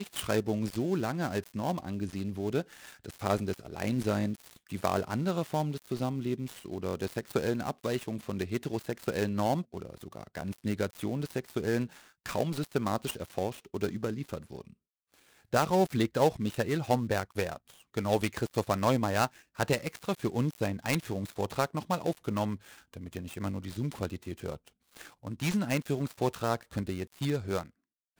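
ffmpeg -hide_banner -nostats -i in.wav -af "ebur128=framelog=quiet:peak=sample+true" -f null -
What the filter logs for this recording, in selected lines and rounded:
Integrated loudness:
  I:         -32.6 LUFS
  Threshold: -43.0 LUFS
Loudness range:
  LRA:         4.7 LU
  Threshold: -53.0 LUFS
  LRA low:   -35.2 LUFS
  LRA high:  -30.5 LUFS
Sample peak:
  Peak:      -11.8 dBFS
True peak:
  Peak:      -10.7 dBFS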